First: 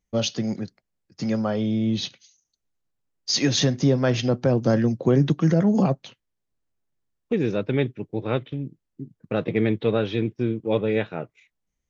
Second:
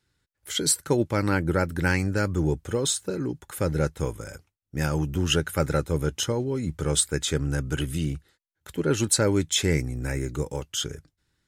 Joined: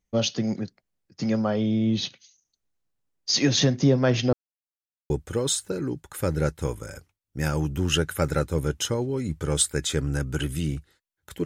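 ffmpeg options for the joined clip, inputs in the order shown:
ffmpeg -i cue0.wav -i cue1.wav -filter_complex "[0:a]apad=whole_dur=11.45,atrim=end=11.45,asplit=2[link_01][link_02];[link_01]atrim=end=4.33,asetpts=PTS-STARTPTS,afade=type=out:start_time=4.326:duration=0.004:curve=hsin[link_03];[link_02]atrim=start=4.33:end=5.1,asetpts=PTS-STARTPTS,volume=0[link_04];[1:a]atrim=start=2.48:end=8.83,asetpts=PTS-STARTPTS,afade=type=in:duration=0.004:curve=hsin[link_05];[link_03][link_04][link_05]concat=n=3:v=0:a=1" out.wav

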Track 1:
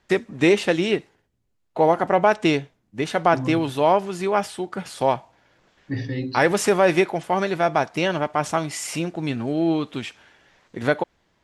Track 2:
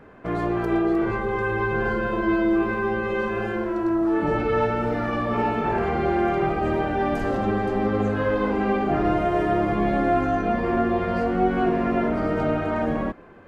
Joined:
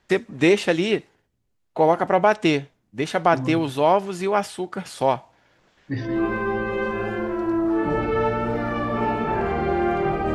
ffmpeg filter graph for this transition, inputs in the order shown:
ffmpeg -i cue0.wav -i cue1.wav -filter_complex "[0:a]apad=whole_dur=10.34,atrim=end=10.34,atrim=end=6.25,asetpts=PTS-STARTPTS[link_01];[1:a]atrim=start=2.34:end=6.71,asetpts=PTS-STARTPTS[link_02];[link_01][link_02]acrossfade=duration=0.28:curve1=tri:curve2=tri" out.wav

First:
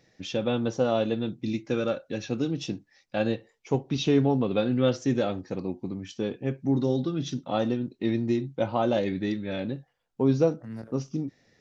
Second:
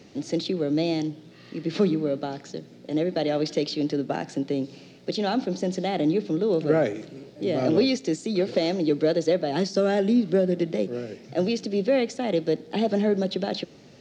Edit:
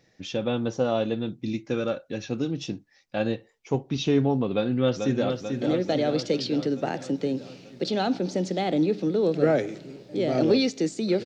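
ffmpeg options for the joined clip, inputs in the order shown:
ffmpeg -i cue0.wav -i cue1.wav -filter_complex "[0:a]apad=whole_dur=11.25,atrim=end=11.25,atrim=end=5.302[link_01];[1:a]atrim=start=2.568:end=8.52[link_02];[link_01][link_02]acrossfade=duration=0.004:curve1=hsin:curve2=hsin,asplit=2[link_03][link_04];[link_04]afade=type=in:start_time=4.52:duration=0.01,afade=type=out:start_time=5.3:duration=0.01,aecho=0:1:440|880|1320|1760|2200|2640|3080|3520|3960|4400:0.530884|0.345075|0.224299|0.145794|0.0947662|0.061598|0.0400387|0.0260252|0.0169164|0.0109956[link_05];[link_03][link_05]amix=inputs=2:normalize=0" out.wav

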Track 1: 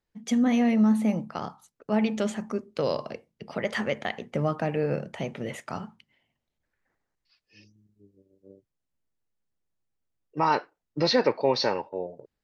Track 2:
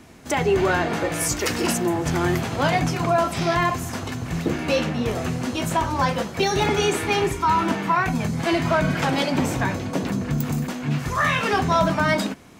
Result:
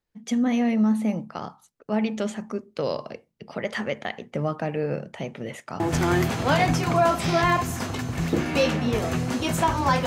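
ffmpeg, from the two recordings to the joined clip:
ffmpeg -i cue0.wav -i cue1.wav -filter_complex "[0:a]apad=whole_dur=10.06,atrim=end=10.06,atrim=end=5.802[link_01];[1:a]atrim=start=1.928:end=6.19[link_02];[link_01][link_02]acrossfade=duration=0.004:curve1=hsin:curve2=hsin" out.wav

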